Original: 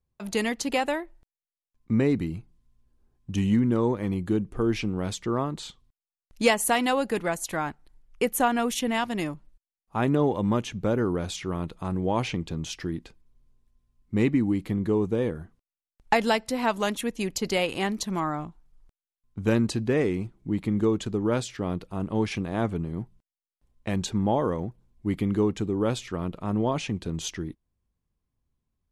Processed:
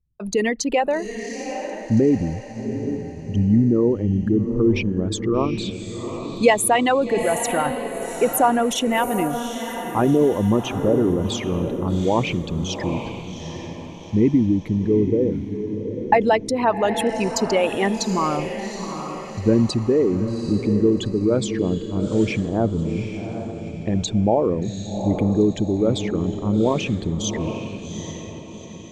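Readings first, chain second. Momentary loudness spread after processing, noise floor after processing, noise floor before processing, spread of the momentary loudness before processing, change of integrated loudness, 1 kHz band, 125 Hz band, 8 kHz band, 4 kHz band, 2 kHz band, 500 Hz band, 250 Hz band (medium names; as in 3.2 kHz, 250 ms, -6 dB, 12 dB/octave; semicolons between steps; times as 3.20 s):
12 LU, -35 dBFS, under -85 dBFS, 10 LU, +6.0 dB, +6.5 dB, +6.5 dB, +6.0 dB, +4.0 dB, +3.5 dB, +7.5 dB, +6.5 dB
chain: resonances exaggerated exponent 2; echo that smears into a reverb 785 ms, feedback 44%, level -8 dB; trim +6 dB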